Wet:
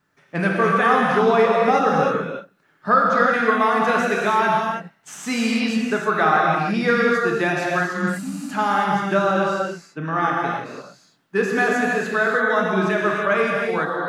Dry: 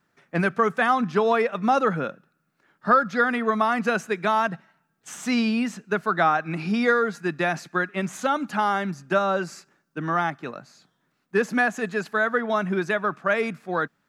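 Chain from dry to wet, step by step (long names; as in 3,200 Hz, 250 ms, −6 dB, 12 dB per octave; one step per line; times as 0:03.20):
0:07.91–0:08.43: healed spectral selection 280–7,400 Hz after
0:09.42–0:10.23: high-shelf EQ 5,400 Hz −8.5 dB
reverb whose tail is shaped and stops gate 360 ms flat, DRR −3 dB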